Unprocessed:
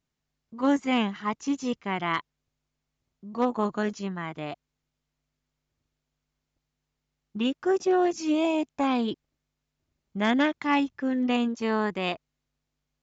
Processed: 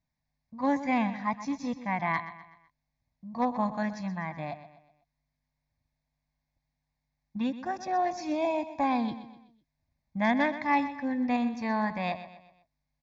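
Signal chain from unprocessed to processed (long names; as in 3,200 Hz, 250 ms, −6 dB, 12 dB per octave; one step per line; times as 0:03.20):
high-shelf EQ 4,500 Hz −10 dB
phaser with its sweep stopped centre 2,000 Hz, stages 8
on a send: repeating echo 125 ms, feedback 43%, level −13 dB
on the sum: level +2 dB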